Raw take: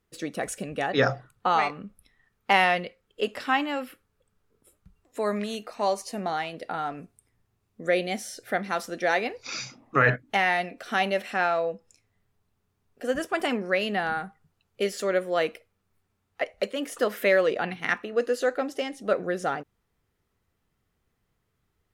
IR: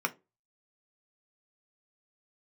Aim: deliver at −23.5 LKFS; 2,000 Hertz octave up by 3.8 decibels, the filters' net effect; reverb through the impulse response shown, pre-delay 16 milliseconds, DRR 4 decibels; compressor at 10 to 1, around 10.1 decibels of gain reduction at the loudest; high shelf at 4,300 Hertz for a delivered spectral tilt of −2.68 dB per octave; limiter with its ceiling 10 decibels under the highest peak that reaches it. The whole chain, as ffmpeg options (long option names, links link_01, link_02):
-filter_complex "[0:a]equalizer=frequency=2000:width_type=o:gain=5.5,highshelf=frequency=4300:gain=-5.5,acompressor=threshold=-23dB:ratio=10,alimiter=limit=-19dB:level=0:latency=1,asplit=2[link_01][link_02];[1:a]atrim=start_sample=2205,adelay=16[link_03];[link_02][link_03]afir=irnorm=-1:irlink=0,volume=-12dB[link_04];[link_01][link_04]amix=inputs=2:normalize=0,volume=7.5dB"